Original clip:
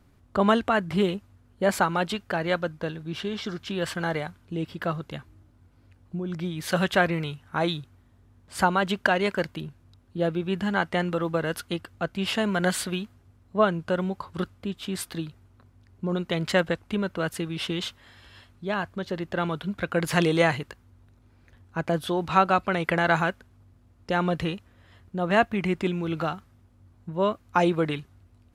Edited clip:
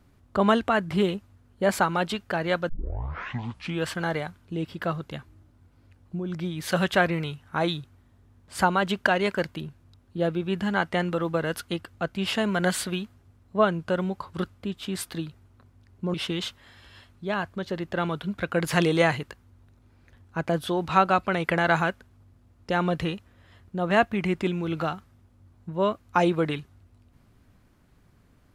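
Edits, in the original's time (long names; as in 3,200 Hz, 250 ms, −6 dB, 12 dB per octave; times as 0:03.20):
0:02.69: tape start 1.19 s
0:16.14–0:17.54: remove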